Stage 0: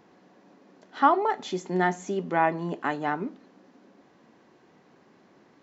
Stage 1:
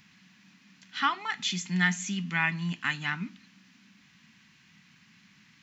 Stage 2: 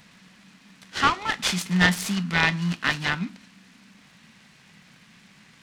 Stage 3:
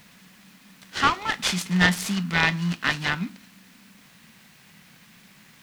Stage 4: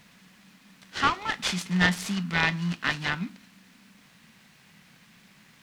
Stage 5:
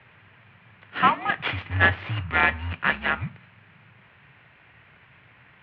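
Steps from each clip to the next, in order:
FFT filter 200 Hz 0 dB, 390 Hz -28 dB, 580 Hz -29 dB, 980 Hz -12 dB, 2.5 kHz +9 dB, 3.7 kHz +6 dB; trim +3 dB
delay time shaken by noise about 1.3 kHz, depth 0.044 ms; trim +6 dB
word length cut 10-bit, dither triangular
treble shelf 11 kHz -8.5 dB; trim -3 dB
mistuned SSB -87 Hz 210–2900 Hz; trim +5 dB

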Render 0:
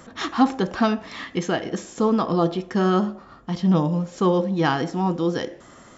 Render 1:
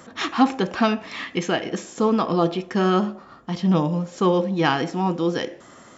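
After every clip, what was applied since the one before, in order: dynamic bell 2.5 kHz, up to +7 dB, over -49 dBFS, Q 3.1; high-pass 130 Hz 6 dB/octave; trim +1 dB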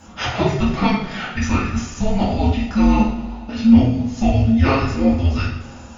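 two-slope reverb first 0.52 s, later 2.7 s, from -18 dB, DRR -7 dB; frequency shift -420 Hz; trim -3.5 dB

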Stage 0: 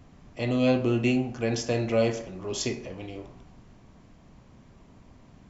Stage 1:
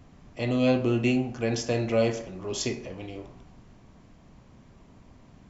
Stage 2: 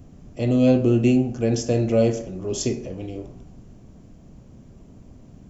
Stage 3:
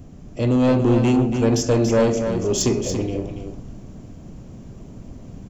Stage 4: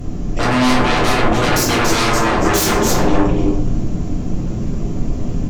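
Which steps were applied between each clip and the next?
no audible change
graphic EQ 1/2/4 kHz -10/-9/-8 dB; trim +7.5 dB
in parallel at -1 dB: gain riding within 3 dB; on the sum: saturation -12.5 dBFS, distortion -12 dB; delay 283 ms -7.5 dB
sine folder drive 15 dB, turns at -9.5 dBFS; reverberation RT60 0.45 s, pre-delay 6 ms, DRR -2.5 dB; trim -7.5 dB

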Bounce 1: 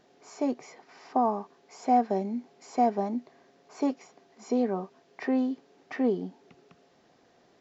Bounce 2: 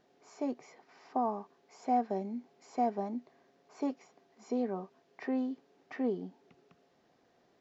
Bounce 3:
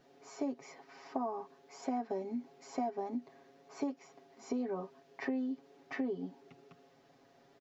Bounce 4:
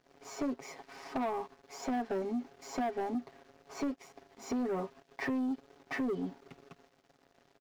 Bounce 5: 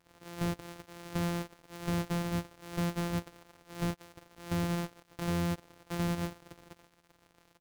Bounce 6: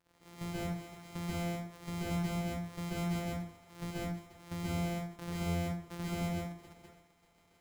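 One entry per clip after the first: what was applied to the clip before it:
treble shelf 4.8 kHz -4 dB; trim -6.5 dB
comb 7.3 ms, depth 85%; compression 6:1, threshold -35 dBFS, peak gain reduction 11.5 dB; trim +2 dB
waveshaping leveller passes 3; trim -5 dB
sorted samples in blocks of 256 samples; trim +1.5 dB
plate-style reverb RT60 0.56 s, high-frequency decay 0.65×, pre-delay 120 ms, DRR -6 dB; trim -8.5 dB

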